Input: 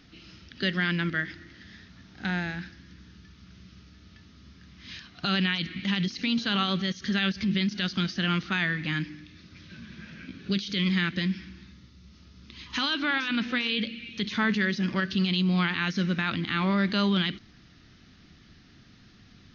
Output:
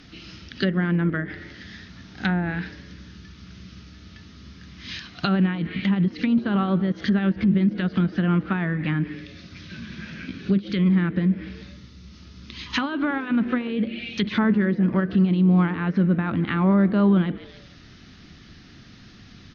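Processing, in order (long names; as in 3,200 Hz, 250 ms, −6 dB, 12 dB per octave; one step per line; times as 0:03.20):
echo with shifted repeats 145 ms, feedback 36%, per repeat +130 Hz, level −22 dB
treble cut that deepens with the level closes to 900 Hz, closed at −24.5 dBFS
level +7.5 dB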